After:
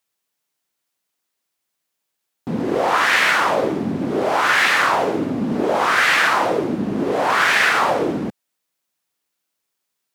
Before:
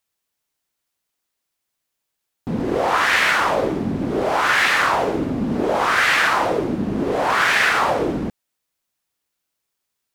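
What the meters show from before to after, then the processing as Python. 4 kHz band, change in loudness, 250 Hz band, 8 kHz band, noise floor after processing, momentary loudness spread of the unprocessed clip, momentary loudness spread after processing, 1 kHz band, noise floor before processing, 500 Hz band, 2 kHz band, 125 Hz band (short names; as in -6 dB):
+1.0 dB, +1.0 dB, +0.5 dB, +1.0 dB, -78 dBFS, 8 LU, 9 LU, +1.0 dB, -79 dBFS, +1.0 dB, +1.0 dB, -1.5 dB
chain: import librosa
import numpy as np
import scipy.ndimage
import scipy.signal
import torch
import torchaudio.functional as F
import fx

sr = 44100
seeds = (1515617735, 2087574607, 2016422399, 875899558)

y = scipy.signal.sosfilt(scipy.signal.butter(2, 130.0, 'highpass', fs=sr, output='sos'), x)
y = F.gain(torch.from_numpy(y), 1.0).numpy()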